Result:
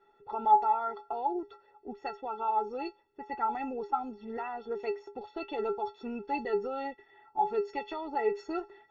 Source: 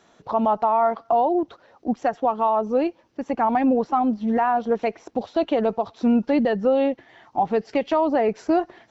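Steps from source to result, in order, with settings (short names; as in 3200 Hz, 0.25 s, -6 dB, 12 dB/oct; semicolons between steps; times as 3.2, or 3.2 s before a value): metallic resonator 400 Hz, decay 0.24 s, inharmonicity 0.03; low-pass opened by the level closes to 2000 Hz, open at -34.5 dBFS; gain +8 dB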